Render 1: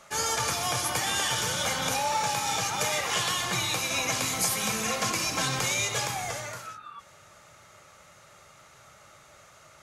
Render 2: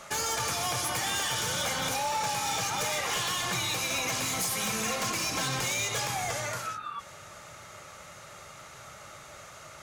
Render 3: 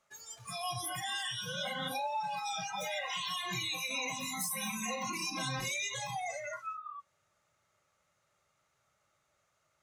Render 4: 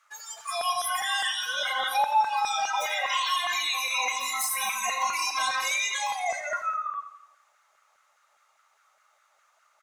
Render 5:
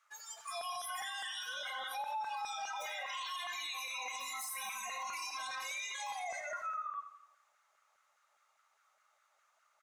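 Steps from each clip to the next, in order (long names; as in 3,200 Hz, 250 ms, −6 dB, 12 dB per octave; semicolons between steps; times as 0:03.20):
downward compressor 2.5 to 1, threshold −37 dBFS, peak gain reduction 10 dB; wave folding −30.5 dBFS; level +6.5 dB
noise reduction from a noise print of the clip's start 26 dB; level −3 dB
auto-filter high-pass saw down 4.9 Hz 700–1,500 Hz; on a send: repeating echo 85 ms, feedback 53%, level −12 dB; on the sum: level +7 dB
brickwall limiter −25 dBFS, peak gain reduction 10.5 dB; level −8 dB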